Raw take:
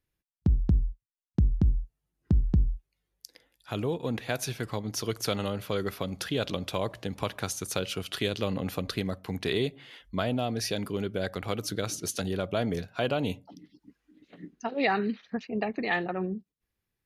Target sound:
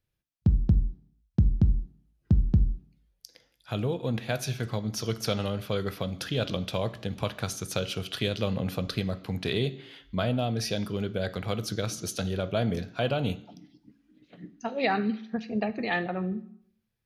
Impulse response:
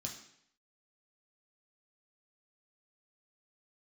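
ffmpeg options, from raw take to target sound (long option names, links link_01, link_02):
-filter_complex "[0:a]asplit=2[link_01][link_02];[1:a]atrim=start_sample=2205,lowpass=6400[link_03];[link_02][link_03]afir=irnorm=-1:irlink=0,volume=-5dB[link_04];[link_01][link_04]amix=inputs=2:normalize=0,volume=-2.5dB"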